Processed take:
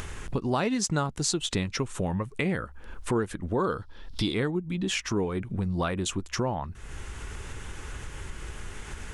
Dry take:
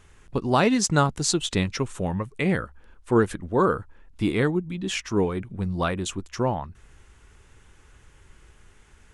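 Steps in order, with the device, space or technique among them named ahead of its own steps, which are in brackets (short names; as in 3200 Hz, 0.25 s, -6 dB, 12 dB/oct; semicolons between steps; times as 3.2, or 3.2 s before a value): 3.64–4.34 band shelf 4200 Hz +13.5 dB 1 oct; upward and downward compression (upward compressor, threshold -23 dBFS; compressor 3:1, threshold -25 dBFS, peak gain reduction 8.5 dB)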